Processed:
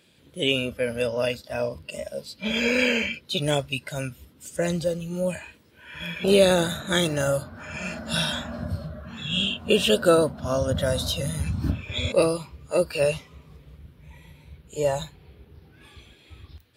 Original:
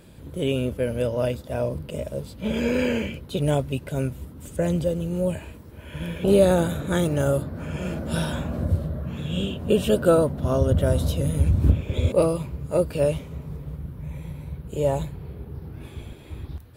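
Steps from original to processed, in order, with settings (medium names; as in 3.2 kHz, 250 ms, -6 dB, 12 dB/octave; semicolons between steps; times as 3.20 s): frequency weighting D; spectral noise reduction 11 dB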